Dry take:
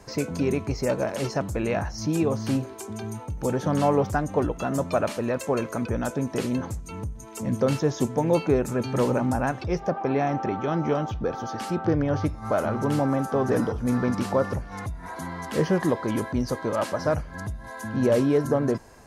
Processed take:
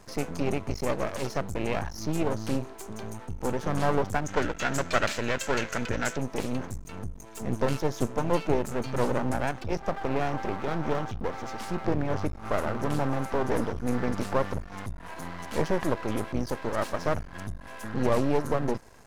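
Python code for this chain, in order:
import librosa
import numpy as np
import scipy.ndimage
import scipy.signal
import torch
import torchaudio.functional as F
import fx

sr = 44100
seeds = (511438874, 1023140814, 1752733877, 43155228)

y = np.maximum(x, 0.0)
y = fx.spec_box(y, sr, start_s=4.26, length_s=1.91, low_hz=1300.0, high_hz=8100.0, gain_db=9)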